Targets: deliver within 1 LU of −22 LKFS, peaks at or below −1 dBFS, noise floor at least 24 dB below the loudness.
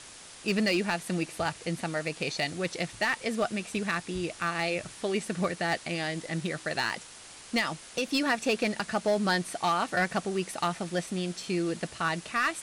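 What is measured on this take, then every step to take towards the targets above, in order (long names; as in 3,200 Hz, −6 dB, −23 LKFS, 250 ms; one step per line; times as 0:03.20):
share of clipped samples 0.6%; peaks flattened at −19.5 dBFS; background noise floor −48 dBFS; target noise floor −54 dBFS; integrated loudness −30.0 LKFS; sample peak −19.5 dBFS; target loudness −22.0 LKFS
→ clipped peaks rebuilt −19.5 dBFS
noise reduction from a noise print 6 dB
level +8 dB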